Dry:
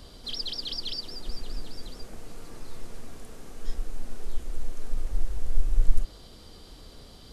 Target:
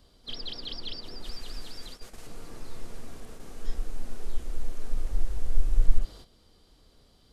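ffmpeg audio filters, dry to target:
-filter_complex "[0:a]acrossover=split=3900[a][b];[b]acompressor=threshold=-52dB:ratio=4:attack=1:release=60[c];[a][c]amix=inputs=2:normalize=0,asettb=1/sr,asplit=3[d][e][f];[d]atrim=end=1.244[g];[e]atrim=start=1.24:end=2.27,asetpts=PTS-STARTPTS,afade=t=in:d=0.004:c=qsin,afade=t=out:st=1.026:d=0.004:c=qsin,tiltshelf=f=940:g=-5[h];[f]atrim=start=2.266[i];[g][h]acrossfade=d=0.004:c1=hsin:c2=qsin[j];[j][i]acrossfade=d=0.004:c1=qsin:c2=hsin,agate=range=-12dB:threshold=-40dB:ratio=16:detection=peak"

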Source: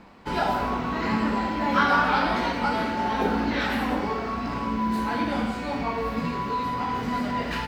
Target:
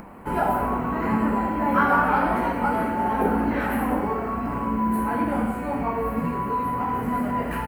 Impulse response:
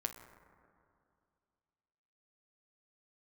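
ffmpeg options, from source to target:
-af "firequalizer=gain_entry='entry(940,0);entry(5000,-21);entry(10000,7)':delay=0.05:min_phase=1,acompressor=mode=upward:threshold=-38dB:ratio=2.5,equalizer=f=3.6k:t=o:w=0.2:g=-11,volume=2.5dB"

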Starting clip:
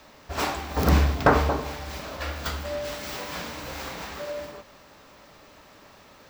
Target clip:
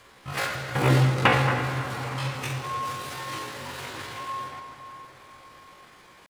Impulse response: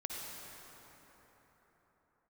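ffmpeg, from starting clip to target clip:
-filter_complex "[0:a]asetrate=80880,aresample=44100,atempo=0.545254,asplit=2[a][b];[1:a]atrim=start_sample=2205,lowpass=5.5k[c];[b][c]afir=irnorm=-1:irlink=0,volume=-1.5dB[d];[a][d]amix=inputs=2:normalize=0,volume=-4.5dB"

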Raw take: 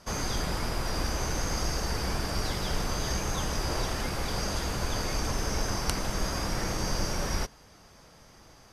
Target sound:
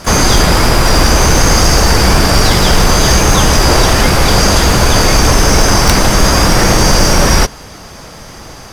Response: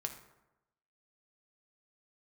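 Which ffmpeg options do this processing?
-filter_complex "[0:a]asplit=2[a][b];[b]asetrate=66075,aresample=44100,atempo=0.66742,volume=-14dB[c];[a][c]amix=inputs=2:normalize=0,acontrast=82,apsyclip=17dB,volume=-1.5dB"

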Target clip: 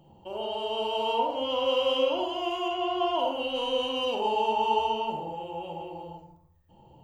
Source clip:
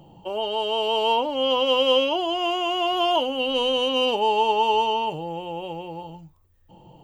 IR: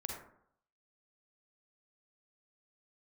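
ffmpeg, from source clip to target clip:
-filter_complex "[0:a]asettb=1/sr,asplit=3[a][b][c];[a]atrim=end=2.684[d];[b]atrim=start=2.68:end=3.19,asetpts=PTS-STARTPTS,afade=t=in:d=0.004:c=qsin,afade=t=out:st=0.506:d=0.004:c=qsin,aemphasis=mode=reproduction:type=50fm[e];[c]atrim=start=3.186[f];[d][e]acrossfade=d=0.004:c1=hsin:c2=qsin[g];[g][f]acrossfade=d=0.004:c1=qsin:c2=hsin[h];[1:a]atrim=start_sample=2205[i];[h][i]afir=irnorm=-1:irlink=0,volume=-5.5dB"

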